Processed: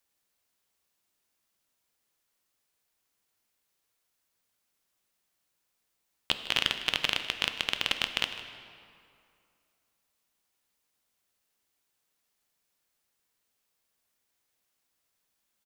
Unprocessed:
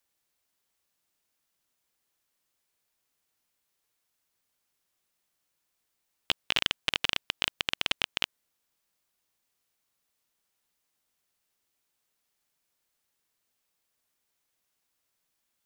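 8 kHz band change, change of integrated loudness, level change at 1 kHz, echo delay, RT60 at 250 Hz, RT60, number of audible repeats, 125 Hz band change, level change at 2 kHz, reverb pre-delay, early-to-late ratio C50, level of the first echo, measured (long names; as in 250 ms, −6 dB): +0.5 dB, +0.5 dB, +1.0 dB, 154 ms, 2.5 s, 2.5 s, 1, +0.5 dB, +0.5 dB, 3 ms, 8.5 dB, −16.0 dB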